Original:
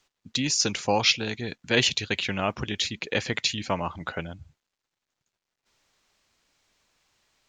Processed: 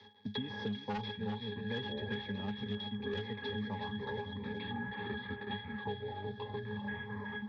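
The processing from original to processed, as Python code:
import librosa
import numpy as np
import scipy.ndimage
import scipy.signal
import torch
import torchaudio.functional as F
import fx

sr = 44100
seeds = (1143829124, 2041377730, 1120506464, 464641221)

y = fx.cvsd(x, sr, bps=32000)
y = fx.echo_pitch(y, sr, ms=640, semitones=-6, count=3, db_per_echo=-6.0)
y = scipy.signal.sosfilt(scipy.signal.butter(2, 130.0, 'highpass', fs=sr, output='sos'), y)
y = fx.high_shelf(y, sr, hz=3500.0, db=10.5)
y = fx.octave_resonator(y, sr, note='G#', decay_s=0.16)
y = y + 10.0 ** (-9.0 / 20.0) * np.pad(y, (int(372 * sr / 1000.0), 0))[:len(y)]
y = np.clip(10.0 ** (30.5 / 20.0) * y, -1.0, 1.0) / 10.0 ** (30.5 / 20.0)
y = scipy.signal.sosfilt(scipy.signal.butter(4, 5000.0, 'lowpass', fs=sr, output='sos'), y)
y = fx.band_squash(y, sr, depth_pct=100)
y = y * librosa.db_to_amplitude(1.0)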